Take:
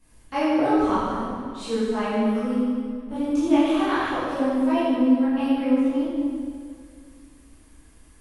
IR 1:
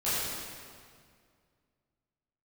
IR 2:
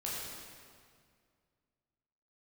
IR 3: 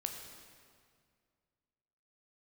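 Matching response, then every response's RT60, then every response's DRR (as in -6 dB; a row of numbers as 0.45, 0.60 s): 1; 2.1, 2.1, 2.1 s; -13.5, -6.5, 3.0 dB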